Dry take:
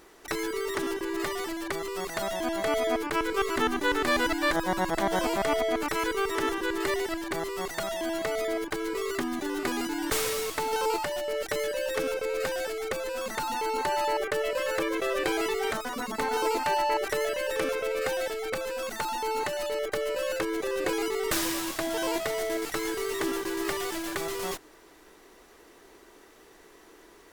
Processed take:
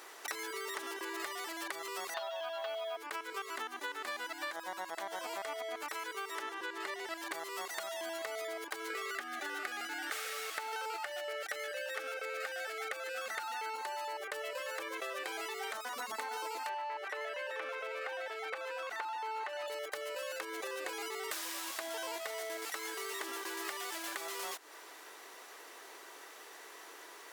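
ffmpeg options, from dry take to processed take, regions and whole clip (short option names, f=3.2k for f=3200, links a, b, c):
-filter_complex "[0:a]asettb=1/sr,asplit=3[a][b][c];[a]atrim=end=2.144[d];[b]atrim=start=2.14:end=2.97,asetpts=PTS-STARTPTS,afade=t=in:d=0.004:c=qsin,afade=t=out:st=0.826:d=0.004:c=qsin,highpass=f=410:w=0.5412,highpass=f=410:w=1.3066,equalizer=f=410:t=q:w=4:g=-7,equalizer=f=710:t=q:w=4:g=4,equalizer=f=2.1k:t=q:w=4:g=-9,equalizer=f=2.9k:t=q:w=4:g=6,lowpass=f=4.5k:w=0.5412,lowpass=f=4.5k:w=1.3066,acrusher=bits=7:mode=log:mix=0:aa=0.000001,aecho=1:1:7.3:0.72,atrim=end_sample=36603[e];[c]atrim=start=2.966[f];[d][e]acrossfade=d=0.004:c1=hsin:c2=qsin[g];[g][f]acrossfade=d=0.004:c1=qsin:c2=hsin,asettb=1/sr,asplit=3[h][i][j];[h]atrim=end=6.414[k];[i]atrim=start=6.41:end=7.13,asetpts=PTS-STARTPTS,afade=t=in:d=0.004:c=qsin,afade=t=out:st=0.716:d=0.004:c=qsin,aeval=exprs='val(0)+0.00631*(sin(2*PI*50*n/s)+sin(2*PI*2*50*n/s)/2+sin(2*PI*3*50*n/s)/3+sin(2*PI*4*50*n/s)/4+sin(2*PI*5*50*n/s)/5)':c=same,highshelf=f=7.4k:g=-10.5[l];[j]atrim=start=7.126[m];[k][l]acrossfade=d=0.004:c1=hsin:c2=qsin[n];[n][m]acrossfade=d=0.004:c1=qsin:c2=hsin,asettb=1/sr,asplit=3[o][p][q];[o]atrim=end=8.904[r];[p]atrim=start=8.9:end=13.76,asetpts=PTS-STARTPTS,afade=t=in:d=0.004:c=qsin,afade=t=out:st=4.856:d=0.004:c=qsin,asuperstop=centerf=1000:order=4:qfactor=3.7,equalizer=f=1.4k:w=0.52:g=9[s];[q]atrim=start=13.756[t];[r][s]acrossfade=d=0.004:c1=hsin:c2=qsin[u];[u][t]acrossfade=d=0.004:c1=qsin:c2=hsin,asettb=1/sr,asplit=3[v][w][x];[v]atrim=end=16.694[y];[w]atrim=start=16.69:end=19.68,asetpts=PTS-STARTPTS,afade=t=in:d=0.004:c=qsin,afade=t=out:st=2.986:d=0.004:c=qsin,highpass=f=250:w=0.5412,highpass=f=250:w=1.3066,acrossover=split=3300[z][aa];[aa]acompressor=threshold=-47dB:ratio=4:attack=1:release=60[ab];[z][ab]amix=inputs=2:normalize=0,asplit=2[ac][ad];[ad]highpass=f=720:p=1,volume=10dB,asoftclip=type=tanh:threshold=-16dB[ae];[ac][ae]amix=inputs=2:normalize=0,lowpass=f=2.7k:p=1,volume=-6dB[af];[x]atrim=start=19.676[ag];[y][af]acrossfade=d=0.004:c1=hsin:c2=qsin[ah];[ah][ag]acrossfade=d=0.004:c1=qsin:c2=hsin,highpass=670,acompressor=threshold=-43dB:ratio=10,volume=5.5dB"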